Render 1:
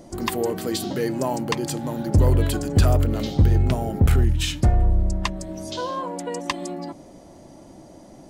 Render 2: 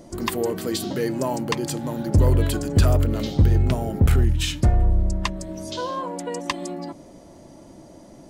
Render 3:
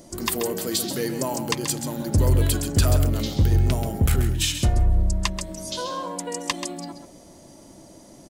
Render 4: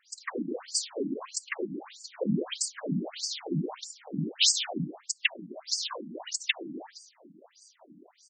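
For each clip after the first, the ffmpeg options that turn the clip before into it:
-af "bandreject=f=770:w=12"
-filter_complex "[0:a]highshelf=f=3.7k:g=11,asplit=2[a][b];[b]aecho=0:1:133:0.355[c];[a][c]amix=inputs=2:normalize=0,volume=-3dB"
-filter_complex "[0:a]acrossover=split=430|1900[a][b][c];[c]dynaudnorm=f=250:g=13:m=11.5dB[d];[a][b][d]amix=inputs=3:normalize=0,afftfilt=real='hypot(re,im)*cos(2*PI*random(0))':imag='hypot(re,im)*sin(2*PI*random(1))':win_size=512:overlap=0.75,afftfilt=real='re*between(b*sr/1024,220*pow(6400/220,0.5+0.5*sin(2*PI*1.6*pts/sr))/1.41,220*pow(6400/220,0.5+0.5*sin(2*PI*1.6*pts/sr))*1.41)':imag='im*between(b*sr/1024,220*pow(6400/220,0.5+0.5*sin(2*PI*1.6*pts/sr))/1.41,220*pow(6400/220,0.5+0.5*sin(2*PI*1.6*pts/sr))*1.41)':win_size=1024:overlap=0.75,volume=5dB"

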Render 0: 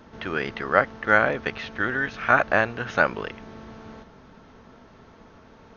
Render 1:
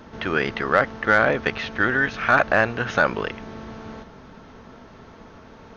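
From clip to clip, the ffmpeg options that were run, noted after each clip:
-af "acontrast=41,alimiter=level_in=4dB:limit=-1dB:release=50:level=0:latency=1,volume=-4.5dB"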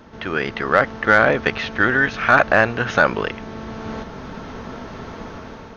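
-af "dynaudnorm=f=250:g=5:m=12.5dB,volume=-1dB"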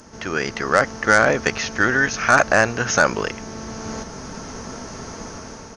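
-af "aexciter=amount=14.3:drive=3.5:freq=5.4k,aresample=22050,aresample=44100,volume=-1dB"

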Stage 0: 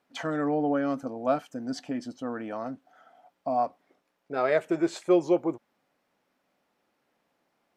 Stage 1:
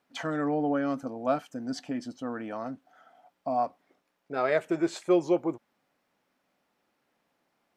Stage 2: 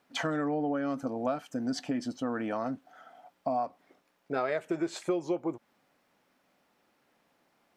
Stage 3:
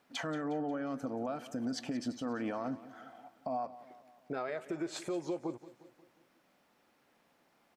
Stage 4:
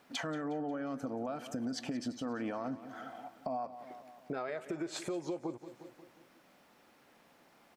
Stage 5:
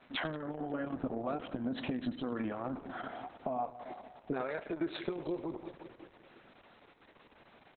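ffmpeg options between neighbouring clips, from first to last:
-af "equalizer=f=500:t=o:w=1.5:g=-2"
-af "acompressor=threshold=-32dB:ratio=6,volume=4.5dB"
-af "alimiter=level_in=4dB:limit=-24dB:level=0:latency=1:release=156,volume=-4dB,aecho=1:1:179|358|537|716|895:0.15|0.0808|0.0436|0.0236|0.0127"
-af "acompressor=threshold=-47dB:ratio=2,volume=6.5dB"
-af "aecho=1:1:97:0.168,volume=4dB" -ar 48000 -c:a libopus -b:a 6k

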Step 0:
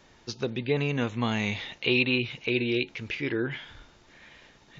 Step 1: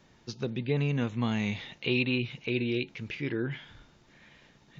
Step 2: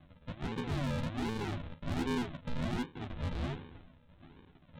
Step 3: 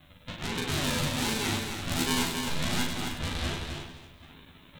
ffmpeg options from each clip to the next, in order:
-af "equalizer=f=160:w=1:g=8,volume=-5.5dB"
-filter_complex "[0:a]aresample=8000,acrusher=samples=17:mix=1:aa=0.000001:lfo=1:lforange=10.2:lforate=1.3,aresample=44100,asoftclip=type=tanh:threshold=-32.5dB,asplit=2[a][b];[b]adelay=12,volume=-4dB[c];[a][c]amix=inputs=2:normalize=0"
-filter_complex "[0:a]asplit=2[a][b];[b]aecho=0:1:262:0.473[c];[a][c]amix=inputs=2:normalize=0,crystalizer=i=8.5:c=0,asplit=2[d][e];[e]aecho=0:1:40|100|190|325|527.5:0.631|0.398|0.251|0.158|0.1[f];[d][f]amix=inputs=2:normalize=0"

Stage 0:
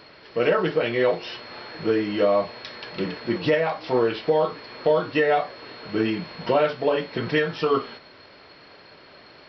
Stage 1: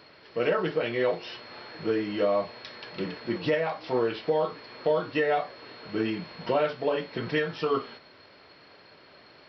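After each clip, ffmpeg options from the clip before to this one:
-af "highpass=47,volume=-5dB"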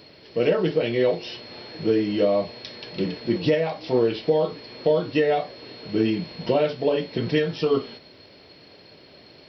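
-af "equalizer=f=1.3k:t=o:w=1.6:g=-13.5,volume=8.5dB"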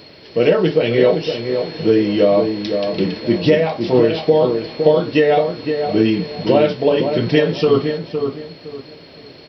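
-filter_complex "[0:a]asplit=2[a][b];[b]adelay=512,lowpass=f=1.4k:p=1,volume=-6dB,asplit=2[c][d];[d]adelay=512,lowpass=f=1.4k:p=1,volume=0.29,asplit=2[e][f];[f]adelay=512,lowpass=f=1.4k:p=1,volume=0.29,asplit=2[g][h];[h]adelay=512,lowpass=f=1.4k:p=1,volume=0.29[i];[a][c][e][g][i]amix=inputs=5:normalize=0,volume=7dB"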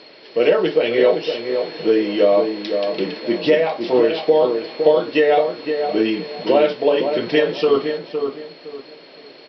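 -af "highpass=340,lowpass=4.8k"

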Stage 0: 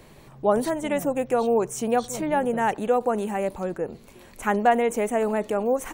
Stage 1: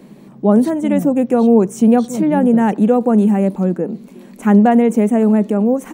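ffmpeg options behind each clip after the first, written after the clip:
-af "equalizer=f=210:t=o:w=2.3:g=12,dynaudnorm=f=430:g=5:m=3dB,lowshelf=f=140:t=q:w=3:g=-10.5,volume=-1dB"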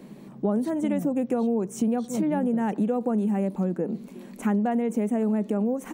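-af "acompressor=threshold=-18dB:ratio=6,volume=-4dB"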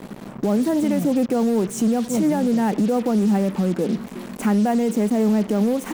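-af "alimiter=limit=-20.5dB:level=0:latency=1:release=39,acrusher=bits=6:mix=0:aa=0.5,asoftclip=type=hard:threshold=-21.5dB,volume=8dB"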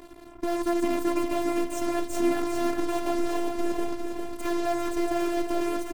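-af "aeval=exprs='0.224*(cos(1*acos(clip(val(0)/0.224,-1,1)))-cos(1*PI/2))+0.0562*(cos(3*acos(clip(val(0)/0.224,-1,1)))-cos(3*PI/2))+0.0158*(cos(5*acos(clip(val(0)/0.224,-1,1)))-cos(5*PI/2))+0.0224*(cos(6*acos(clip(val(0)/0.224,-1,1)))-cos(6*PI/2))':c=same,aecho=1:1:404|808|1212|1616|2020|2424|2828:0.501|0.266|0.141|0.0746|0.0395|0.021|0.0111,afftfilt=real='hypot(re,im)*cos(PI*b)':imag='0':win_size=512:overlap=0.75,volume=-2dB"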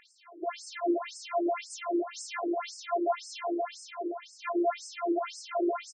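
-filter_complex "[0:a]flanger=delay=9.7:depth=2:regen=-66:speed=1.9:shape=triangular,asplit=2[a][b];[b]aecho=0:1:60|138|239.4|371.2|542.6:0.631|0.398|0.251|0.158|0.1[c];[a][c]amix=inputs=2:normalize=0,afftfilt=real='re*between(b*sr/1024,390*pow(6600/390,0.5+0.5*sin(2*PI*1.9*pts/sr))/1.41,390*pow(6600/390,0.5+0.5*sin(2*PI*1.9*pts/sr))*1.41)':imag='im*between(b*sr/1024,390*pow(6600/390,0.5+0.5*sin(2*PI*1.9*pts/sr))/1.41,390*pow(6600/390,0.5+0.5*sin(2*PI*1.9*pts/sr))*1.41)':win_size=1024:overlap=0.75,volume=6.5dB"

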